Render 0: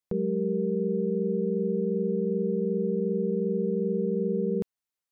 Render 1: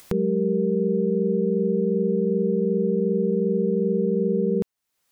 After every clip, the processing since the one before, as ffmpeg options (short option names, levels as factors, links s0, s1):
-af "acompressor=mode=upward:threshold=0.0355:ratio=2.5,volume=1.78"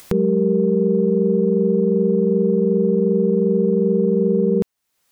-af "acontrast=32"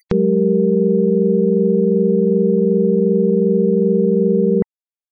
-af "afftfilt=real='re*gte(hypot(re,im),0.0112)':imag='im*gte(hypot(re,im),0.0112)':win_size=1024:overlap=0.75,volume=1.33"